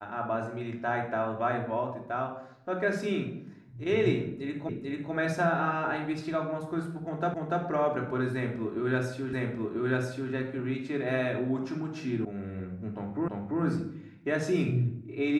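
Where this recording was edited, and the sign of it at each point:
4.69 s: repeat of the last 0.44 s
7.34 s: repeat of the last 0.29 s
9.33 s: repeat of the last 0.99 s
12.25 s: sound stops dead
13.28 s: repeat of the last 0.34 s

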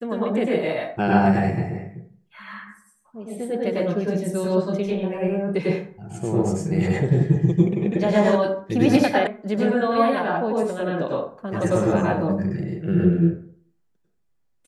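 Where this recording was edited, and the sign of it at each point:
9.27 s: sound stops dead

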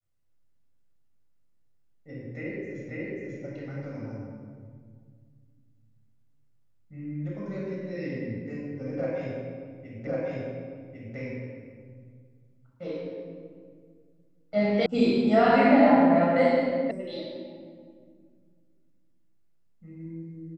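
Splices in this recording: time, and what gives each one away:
2.89 s: repeat of the last 0.54 s
10.07 s: repeat of the last 1.1 s
14.86 s: sound stops dead
16.91 s: sound stops dead

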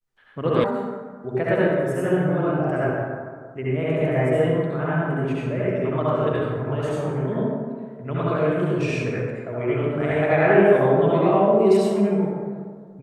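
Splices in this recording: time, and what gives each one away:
0.64 s: sound stops dead

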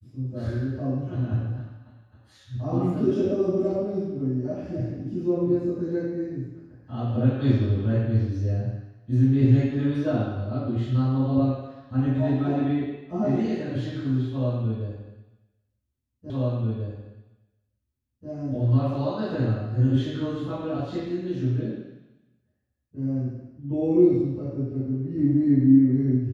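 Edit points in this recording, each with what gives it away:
16.30 s: repeat of the last 1.99 s

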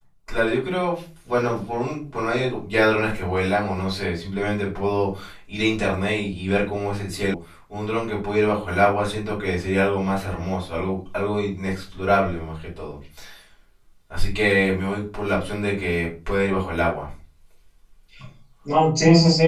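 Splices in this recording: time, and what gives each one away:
7.34 s: sound stops dead

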